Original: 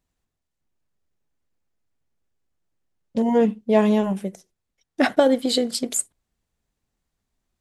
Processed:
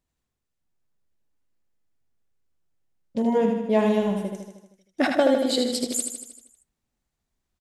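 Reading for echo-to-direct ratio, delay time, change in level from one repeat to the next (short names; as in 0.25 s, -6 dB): -3.0 dB, 78 ms, -4.5 dB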